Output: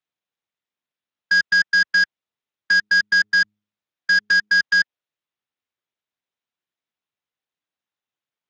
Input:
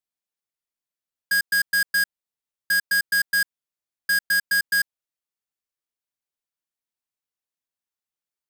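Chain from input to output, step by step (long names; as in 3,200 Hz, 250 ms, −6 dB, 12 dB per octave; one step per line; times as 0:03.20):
0:02.72–0:04.59: hum removal 104.4 Hz, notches 4
level +5 dB
Speex 34 kbit/s 16,000 Hz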